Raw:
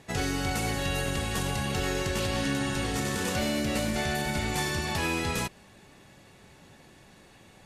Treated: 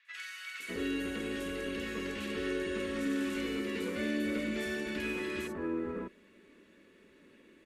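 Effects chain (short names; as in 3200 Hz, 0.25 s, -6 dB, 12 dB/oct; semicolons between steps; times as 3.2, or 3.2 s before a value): three-band isolator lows -14 dB, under 160 Hz, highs -15 dB, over 2700 Hz; fixed phaser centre 320 Hz, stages 4; three bands offset in time mids, highs, lows 50/600 ms, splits 1400/5200 Hz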